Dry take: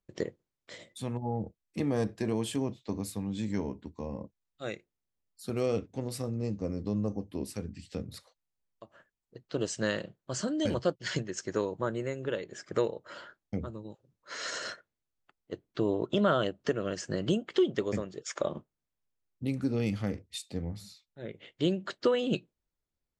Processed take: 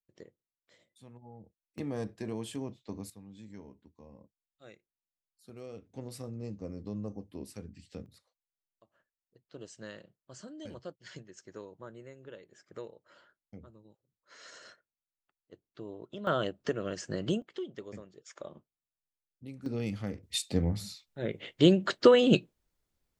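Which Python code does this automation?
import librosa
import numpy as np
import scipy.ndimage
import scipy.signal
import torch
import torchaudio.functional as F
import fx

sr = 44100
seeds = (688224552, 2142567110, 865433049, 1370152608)

y = fx.gain(x, sr, db=fx.steps((0.0, -18.0), (1.78, -6.5), (3.1, -16.0), (5.86, -7.0), (8.06, -15.0), (16.27, -2.5), (17.42, -13.0), (19.66, -4.0), (20.23, 7.0)))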